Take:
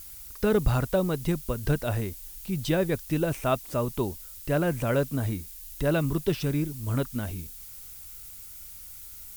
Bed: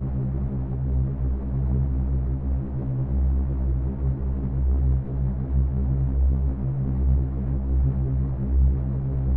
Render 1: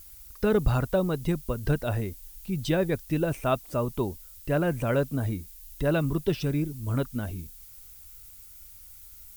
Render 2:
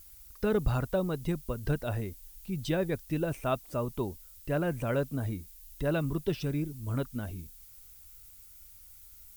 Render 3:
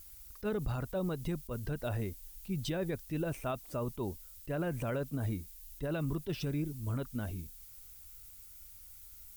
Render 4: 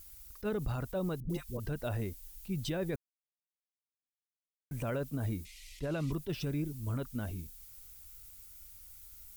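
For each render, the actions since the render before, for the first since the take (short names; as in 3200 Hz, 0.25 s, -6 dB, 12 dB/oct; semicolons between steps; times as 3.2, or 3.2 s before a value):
denoiser 6 dB, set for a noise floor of -44 dBFS
gain -4.5 dB
limiter -26.5 dBFS, peak gain reduction 9.5 dB; attack slew limiter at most 440 dB/s
1.2–1.6 dispersion highs, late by 97 ms, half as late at 630 Hz; 2.96–4.71 mute; 5.45–6.12 decimation joined by straight lines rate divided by 2×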